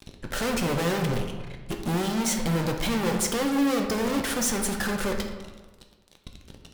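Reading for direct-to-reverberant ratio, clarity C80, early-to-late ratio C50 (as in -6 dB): 2.5 dB, 8.0 dB, 6.0 dB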